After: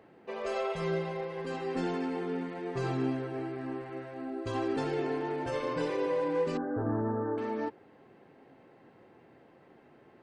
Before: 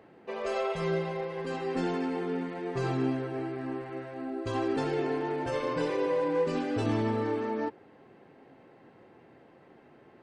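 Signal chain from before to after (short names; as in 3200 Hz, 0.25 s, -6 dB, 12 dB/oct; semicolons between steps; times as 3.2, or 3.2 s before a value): 6.57–7.38 elliptic low-pass 1600 Hz, stop band 40 dB; gain -2 dB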